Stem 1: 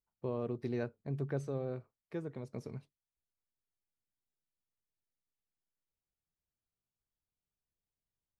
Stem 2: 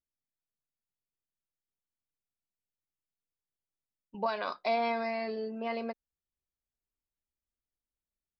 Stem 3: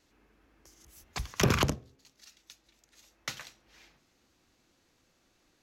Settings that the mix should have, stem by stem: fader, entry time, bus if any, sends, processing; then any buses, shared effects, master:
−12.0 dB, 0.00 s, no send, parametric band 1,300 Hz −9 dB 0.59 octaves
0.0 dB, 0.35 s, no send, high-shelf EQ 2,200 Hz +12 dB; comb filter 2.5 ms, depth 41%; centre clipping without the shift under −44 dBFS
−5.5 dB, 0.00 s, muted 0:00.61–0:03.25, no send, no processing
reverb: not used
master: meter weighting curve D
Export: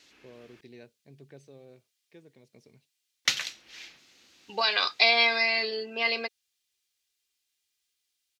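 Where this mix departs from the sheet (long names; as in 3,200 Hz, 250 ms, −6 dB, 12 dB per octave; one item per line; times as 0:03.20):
stem 2: missing centre clipping without the shift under −44 dBFS
stem 3 −5.5 dB → +4.0 dB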